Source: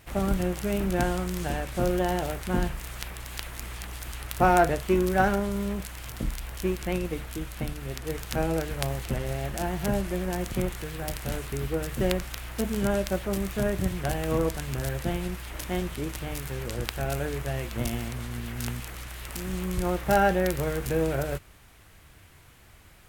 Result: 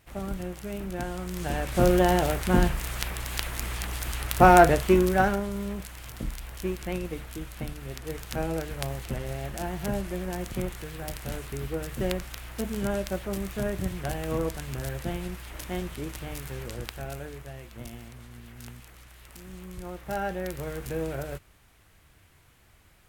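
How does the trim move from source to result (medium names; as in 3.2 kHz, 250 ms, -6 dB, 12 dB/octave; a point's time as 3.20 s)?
1.07 s -7.5 dB
1.81 s +5 dB
4.81 s +5 dB
5.46 s -3 dB
16.59 s -3 dB
17.57 s -11.5 dB
19.91 s -11.5 dB
20.79 s -5.5 dB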